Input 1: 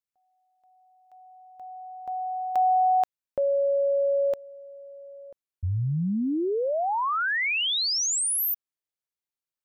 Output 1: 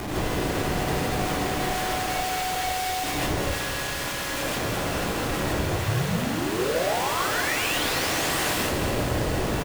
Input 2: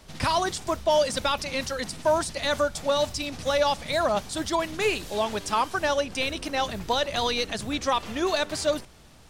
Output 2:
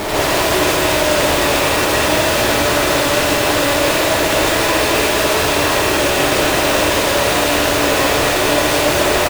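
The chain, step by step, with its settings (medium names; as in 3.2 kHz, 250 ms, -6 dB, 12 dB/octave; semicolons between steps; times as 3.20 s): spectral levelling over time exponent 0.2; gate -20 dBFS, range -9 dB; dynamic bell 2.6 kHz, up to +4 dB, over -31 dBFS, Q 2.9; small resonant body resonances 290/1900 Hz, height 10 dB, ringing for 80 ms; Schmitt trigger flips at -27 dBFS; on a send: feedback delay 222 ms, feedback 58%, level -9 dB; on the sum: gated-style reverb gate 180 ms rising, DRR -5.5 dB; trim -7.5 dB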